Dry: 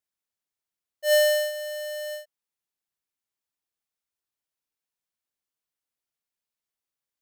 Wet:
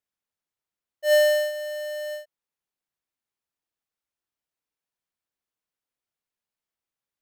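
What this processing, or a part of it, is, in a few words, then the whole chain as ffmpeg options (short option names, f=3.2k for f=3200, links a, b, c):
behind a face mask: -af "highshelf=f=3.5k:g=-7,volume=2dB"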